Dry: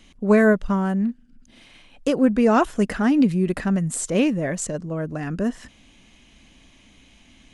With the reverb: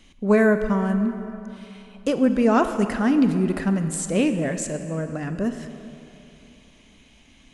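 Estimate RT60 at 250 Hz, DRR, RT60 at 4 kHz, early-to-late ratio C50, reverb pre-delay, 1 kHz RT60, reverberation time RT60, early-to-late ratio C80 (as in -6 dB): 3.0 s, 8.0 dB, 2.1 s, 9.0 dB, 23 ms, 3.0 s, 3.0 s, 9.5 dB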